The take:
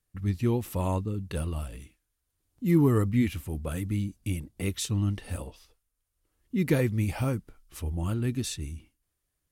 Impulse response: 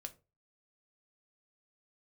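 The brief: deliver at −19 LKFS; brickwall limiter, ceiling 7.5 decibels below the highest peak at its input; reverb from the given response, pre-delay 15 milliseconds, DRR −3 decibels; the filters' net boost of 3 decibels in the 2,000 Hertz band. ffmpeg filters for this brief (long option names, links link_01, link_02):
-filter_complex "[0:a]equalizer=frequency=2000:width_type=o:gain=3.5,alimiter=limit=-19dB:level=0:latency=1,asplit=2[link_01][link_02];[1:a]atrim=start_sample=2205,adelay=15[link_03];[link_02][link_03]afir=irnorm=-1:irlink=0,volume=7.5dB[link_04];[link_01][link_04]amix=inputs=2:normalize=0,volume=8dB"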